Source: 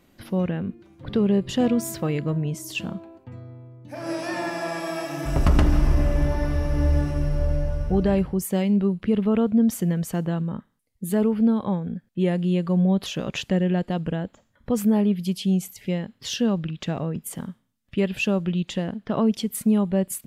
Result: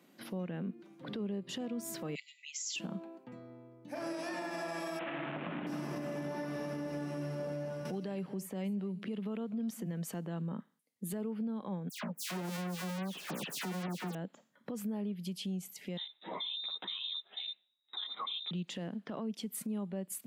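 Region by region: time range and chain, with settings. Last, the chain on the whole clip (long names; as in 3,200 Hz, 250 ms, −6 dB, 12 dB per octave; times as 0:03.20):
0:02.15–0:02.76: linear-phase brick-wall band-pass 1,900–7,700 Hz + high-shelf EQ 4,400 Hz +10 dB + comb filter 7.5 ms, depth 99%
0:04.99–0:05.67: linear delta modulator 16 kbit/s, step −23 dBFS + notch filter 420 Hz, Q 9
0:07.85–0:09.86: single-tap delay 240 ms −22.5 dB + multiband upward and downward compressor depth 70%
0:11.89–0:14.15: each half-wave held at its own peak + all-pass dispersion lows, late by 139 ms, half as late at 2,500 Hz
0:15.97–0:18.51: voice inversion scrambler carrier 3,800 Hz + string-ensemble chorus
whole clip: Butterworth high-pass 160 Hz 36 dB per octave; downward compressor 6 to 1, threshold −30 dBFS; brickwall limiter −26.5 dBFS; level −4 dB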